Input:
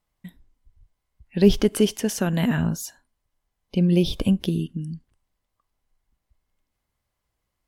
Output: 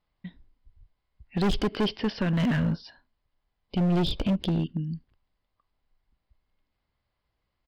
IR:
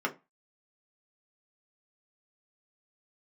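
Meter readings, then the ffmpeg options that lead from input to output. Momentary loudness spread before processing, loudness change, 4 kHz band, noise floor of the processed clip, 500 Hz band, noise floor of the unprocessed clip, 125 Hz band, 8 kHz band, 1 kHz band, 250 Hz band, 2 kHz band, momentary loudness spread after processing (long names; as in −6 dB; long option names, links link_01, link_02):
15 LU, −5.0 dB, −2.0 dB, −81 dBFS, −8.0 dB, −80 dBFS, −3.0 dB, below −15 dB, +2.5 dB, −5.0 dB, −2.0 dB, 13 LU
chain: -af "aresample=11025,aresample=44100,volume=21dB,asoftclip=hard,volume=-21dB"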